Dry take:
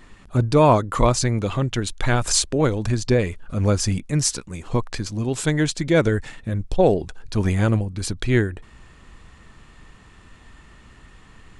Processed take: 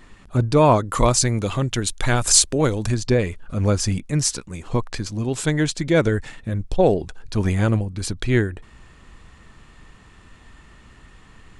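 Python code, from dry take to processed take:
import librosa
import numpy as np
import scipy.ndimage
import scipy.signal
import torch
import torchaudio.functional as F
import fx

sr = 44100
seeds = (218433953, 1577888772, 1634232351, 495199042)

y = fx.high_shelf(x, sr, hz=6100.0, db=10.5, at=(0.85, 2.94))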